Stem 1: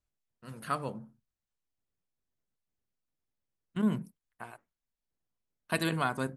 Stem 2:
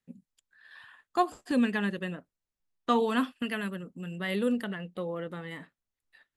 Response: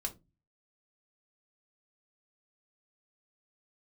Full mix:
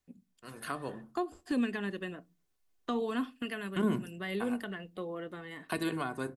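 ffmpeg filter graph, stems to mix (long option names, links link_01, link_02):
-filter_complex "[0:a]dynaudnorm=framelen=590:gausssize=5:maxgain=4.5dB,lowshelf=frequency=180:gain=-12,volume=0.5dB,asplit=2[link_01][link_02];[link_02]volume=-7.5dB[link_03];[1:a]volume=-5dB,asplit=2[link_04][link_05];[link_05]volume=-11.5dB[link_06];[2:a]atrim=start_sample=2205[link_07];[link_03][link_06]amix=inputs=2:normalize=0[link_08];[link_08][link_07]afir=irnorm=-1:irlink=0[link_09];[link_01][link_04][link_09]amix=inputs=3:normalize=0,equalizer=frequency=71:width=1.5:gain=4,aecho=1:1:2.8:0.32,acrossover=split=410[link_10][link_11];[link_11]acompressor=threshold=-36dB:ratio=5[link_12];[link_10][link_12]amix=inputs=2:normalize=0"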